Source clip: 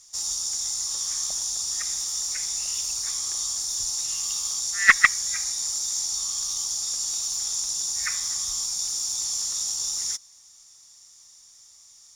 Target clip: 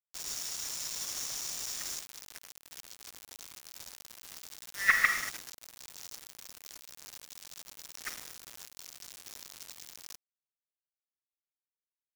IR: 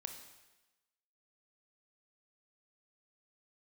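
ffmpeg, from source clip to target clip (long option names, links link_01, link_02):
-filter_complex "[0:a]asetnsamples=nb_out_samples=441:pad=0,asendcmd='1.99 equalizer g -14.5',equalizer=frequency=8000:width=1.4:gain=-4.5[link_01];[1:a]atrim=start_sample=2205,afade=type=out:start_time=0.23:duration=0.01,atrim=end_sample=10584,asetrate=32193,aresample=44100[link_02];[link_01][link_02]afir=irnorm=-1:irlink=0,acrusher=bits=4:mix=0:aa=0.000001,volume=-6.5dB"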